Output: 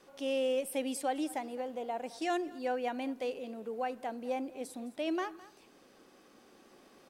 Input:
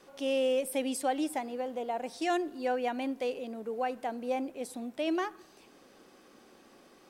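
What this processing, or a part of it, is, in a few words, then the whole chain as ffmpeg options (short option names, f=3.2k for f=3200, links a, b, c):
ducked delay: -filter_complex "[0:a]asplit=3[a][b][c];[b]adelay=212,volume=-2.5dB[d];[c]apad=whole_len=322416[e];[d][e]sidechaincompress=threshold=-48dB:ratio=5:attack=16:release=1300[f];[a][f]amix=inputs=2:normalize=0,volume=-3dB"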